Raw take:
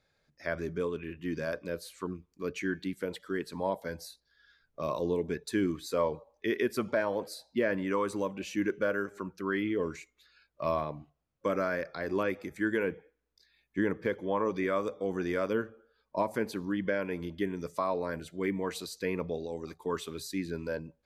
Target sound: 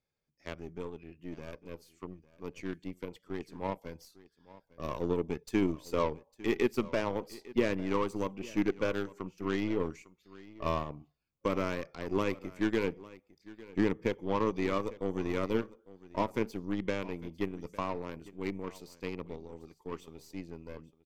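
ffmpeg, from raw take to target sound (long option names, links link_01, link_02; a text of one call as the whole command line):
ffmpeg -i in.wav -af "lowshelf=frequency=160:gain=-4,bandreject=frequency=3900:width=9.4,aeval=exprs='0.126*(cos(1*acos(clip(val(0)/0.126,-1,1)))-cos(1*PI/2))+0.0316*(cos(3*acos(clip(val(0)/0.126,-1,1)))-cos(3*PI/2))+0.00282*(cos(4*acos(clip(val(0)/0.126,-1,1)))-cos(4*PI/2))+0.00282*(cos(6*acos(clip(val(0)/0.126,-1,1)))-cos(6*PI/2))+0.00398*(cos(8*acos(clip(val(0)/0.126,-1,1)))-cos(8*PI/2))':channel_layout=same,dynaudnorm=framelen=470:gausssize=17:maxgain=7dB,asoftclip=type=tanh:threshold=-16.5dB,equalizer=frequency=630:width_type=o:width=0.67:gain=-7,equalizer=frequency=1600:width_type=o:width=0.67:gain=-11,equalizer=frequency=4000:width_type=o:width=0.67:gain=-5,equalizer=frequency=10000:width_type=o:width=0.67:gain=-10,aecho=1:1:853:0.106,volume=3dB" out.wav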